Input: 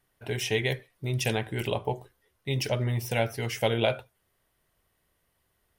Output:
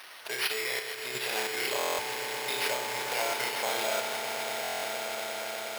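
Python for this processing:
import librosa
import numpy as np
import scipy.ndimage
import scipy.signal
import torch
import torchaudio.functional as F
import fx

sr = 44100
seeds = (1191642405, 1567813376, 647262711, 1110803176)

y = fx.delta_mod(x, sr, bps=64000, step_db=-40.0)
y = fx.room_flutter(y, sr, wall_m=5.5, rt60_s=0.69)
y = fx.level_steps(y, sr, step_db=10)
y = fx.echo_swell(y, sr, ms=119, loudest=8, wet_db=-12.0)
y = np.repeat(y[::6], 6)[:len(y)]
y = scipy.signal.sosfilt(scipy.signal.butter(2, 820.0, 'highpass', fs=sr, output='sos'), y)
y = fx.buffer_glitch(y, sr, at_s=(1.78, 4.62), block=1024, repeats=8)
y = F.gain(torch.from_numpy(y), 5.0).numpy()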